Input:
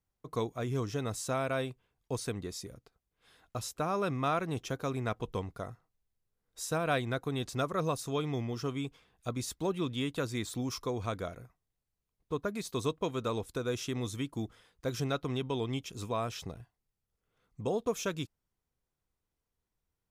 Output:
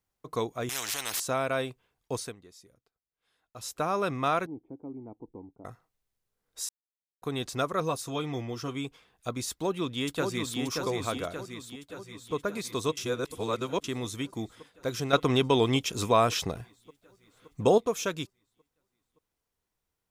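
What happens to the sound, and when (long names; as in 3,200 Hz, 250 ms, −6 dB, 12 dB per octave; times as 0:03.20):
0:00.69–0:01.20: every bin compressed towards the loudest bin 10 to 1
0:02.18–0:03.72: duck −16 dB, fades 0.18 s
0:04.46–0:05.65: formant resonators in series u
0:06.69–0:07.22: silence
0:07.80–0:08.75: notch comb filter 210 Hz
0:09.49–0:10.59: delay throw 580 ms, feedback 55%, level −4 dB
0:11.32–0:12.34: delay throw 570 ms, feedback 75%, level −9 dB
0:12.97–0:13.84: reverse
0:15.13–0:17.78: clip gain +8 dB
whole clip: low-shelf EQ 220 Hz −7.5 dB; level +4.5 dB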